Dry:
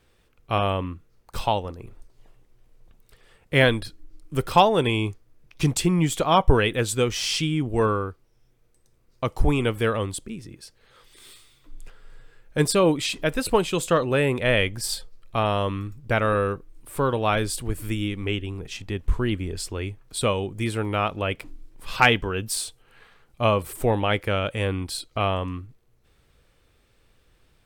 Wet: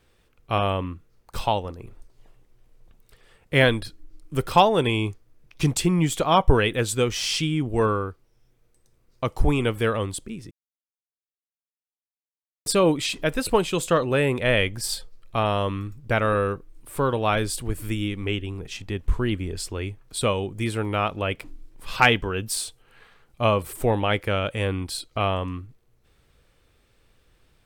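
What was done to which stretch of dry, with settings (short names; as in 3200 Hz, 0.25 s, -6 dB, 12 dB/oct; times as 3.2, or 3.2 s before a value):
10.51–12.66 mute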